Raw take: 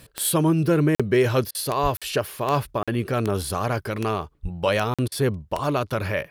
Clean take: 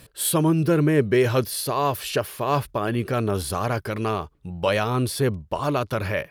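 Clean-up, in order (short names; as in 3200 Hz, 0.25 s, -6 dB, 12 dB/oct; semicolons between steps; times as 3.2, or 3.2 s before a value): de-click; 1.82–1.94 HPF 140 Hz 24 dB/oct; 4.42–4.54 HPF 140 Hz 24 dB/oct; interpolate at 0.95/1.97/2.83/4.94, 46 ms; interpolate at 1.51/5.08, 37 ms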